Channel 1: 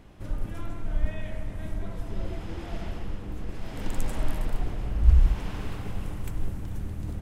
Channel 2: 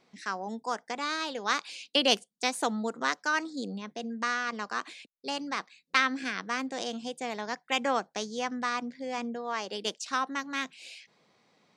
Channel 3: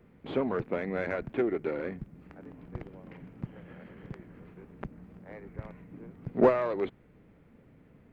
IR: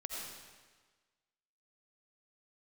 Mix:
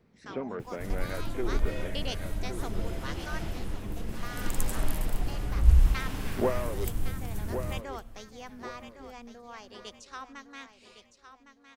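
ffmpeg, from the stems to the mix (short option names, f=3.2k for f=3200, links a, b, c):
-filter_complex "[0:a]aemphasis=mode=production:type=50kf,acrusher=bits=10:mix=0:aa=0.000001,adelay=600,volume=-1.5dB,asplit=2[a][b];[b]volume=-21.5dB[c];[1:a]volume=-13dB,asplit=3[d][e][f];[e]volume=-21.5dB[g];[f]volume=-10.5dB[h];[2:a]volume=-6dB,asplit=2[i][j];[j]volume=-8dB[k];[3:a]atrim=start_sample=2205[l];[g][l]afir=irnorm=-1:irlink=0[m];[c][h][k]amix=inputs=3:normalize=0,aecho=0:1:1110|2220|3330|4440|5550:1|0.35|0.122|0.0429|0.015[n];[a][d][i][m][n]amix=inputs=5:normalize=0"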